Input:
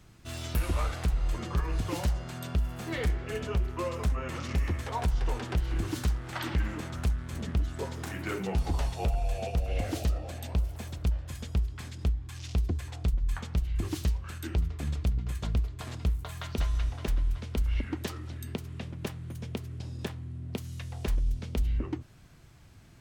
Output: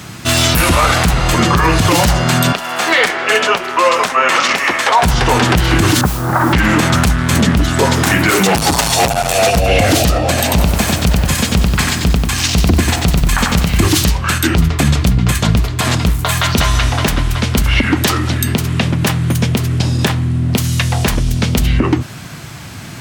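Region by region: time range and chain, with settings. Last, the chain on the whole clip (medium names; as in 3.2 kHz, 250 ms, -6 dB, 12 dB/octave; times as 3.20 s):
2.52–5.03 s: high-pass 570 Hz + treble shelf 9.6 kHz -11.5 dB
6.01–6.53 s: inverse Chebyshev low-pass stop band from 5.8 kHz, stop band 70 dB + modulation noise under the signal 23 dB + compression 2:1, threshold -36 dBFS
8.30–9.57 s: tone controls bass -6 dB, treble +7 dB + hard clipper -35.5 dBFS
10.28–13.86 s: band-stop 3.5 kHz, Q 24 + bit-crushed delay 93 ms, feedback 35%, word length 10-bit, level -3.5 dB
whole clip: high-pass 140 Hz 12 dB/octave; peaking EQ 410 Hz -5.5 dB 1.3 oct; loudness maximiser +31 dB; trim -1 dB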